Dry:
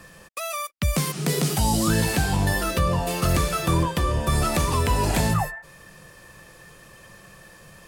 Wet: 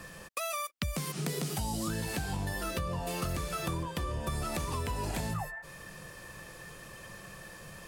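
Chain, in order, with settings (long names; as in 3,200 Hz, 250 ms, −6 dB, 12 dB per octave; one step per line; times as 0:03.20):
downward compressor 6 to 1, threshold −32 dBFS, peak gain reduction 14.5 dB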